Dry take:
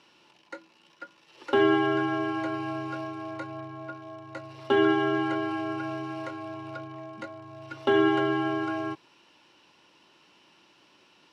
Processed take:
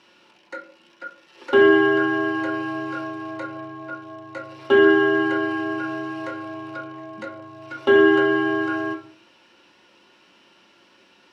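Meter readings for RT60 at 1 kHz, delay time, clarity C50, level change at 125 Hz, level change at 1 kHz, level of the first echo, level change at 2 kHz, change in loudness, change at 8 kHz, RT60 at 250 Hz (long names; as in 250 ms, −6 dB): 0.35 s, no echo audible, 10.5 dB, −1.0 dB, +3.5 dB, no echo audible, +10.5 dB, +8.0 dB, can't be measured, 0.55 s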